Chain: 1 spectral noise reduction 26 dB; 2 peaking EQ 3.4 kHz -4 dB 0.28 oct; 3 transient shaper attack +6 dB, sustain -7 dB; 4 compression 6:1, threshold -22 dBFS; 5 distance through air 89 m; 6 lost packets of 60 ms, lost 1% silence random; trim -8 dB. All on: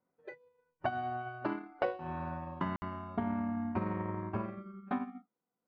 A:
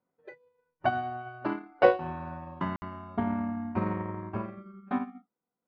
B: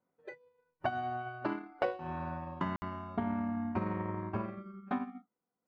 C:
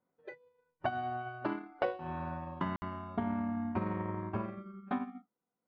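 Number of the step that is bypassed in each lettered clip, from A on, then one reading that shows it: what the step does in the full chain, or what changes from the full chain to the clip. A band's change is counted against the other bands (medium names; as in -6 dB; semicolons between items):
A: 4, mean gain reduction 2.0 dB; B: 5, 4 kHz band +1.5 dB; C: 2, 4 kHz band +1.5 dB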